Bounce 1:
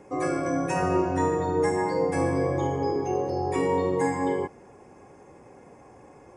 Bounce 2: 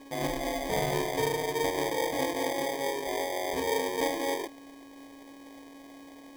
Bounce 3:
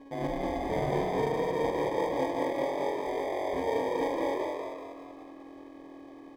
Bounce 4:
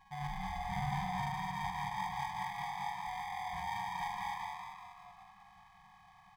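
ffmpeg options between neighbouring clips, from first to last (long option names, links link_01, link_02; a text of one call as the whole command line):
ffmpeg -i in.wav -af "highpass=590,aeval=exprs='val(0)+0.00447*sin(2*PI*1100*n/s)':channel_layout=same,acrusher=samples=32:mix=1:aa=0.000001" out.wav
ffmpeg -i in.wav -filter_complex "[0:a]lowpass=frequency=1000:poles=1,asplit=2[link_01][link_02];[link_02]asplit=7[link_03][link_04][link_05][link_06][link_07][link_08][link_09];[link_03]adelay=193,afreqshift=42,volume=-4dB[link_10];[link_04]adelay=386,afreqshift=84,volume=-9.2dB[link_11];[link_05]adelay=579,afreqshift=126,volume=-14.4dB[link_12];[link_06]adelay=772,afreqshift=168,volume=-19.6dB[link_13];[link_07]adelay=965,afreqshift=210,volume=-24.8dB[link_14];[link_08]adelay=1158,afreqshift=252,volume=-30dB[link_15];[link_09]adelay=1351,afreqshift=294,volume=-35.2dB[link_16];[link_10][link_11][link_12][link_13][link_14][link_15][link_16]amix=inputs=7:normalize=0[link_17];[link_01][link_17]amix=inputs=2:normalize=0" out.wav
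ffmpeg -i in.wav -af "afftfilt=real='re*(1-between(b*sr/4096,210,700))':imag='im*(1-between(b*sr/4096,210,700))':win_size=4096:overlap=0.75,volume=-2.5dB" out.wav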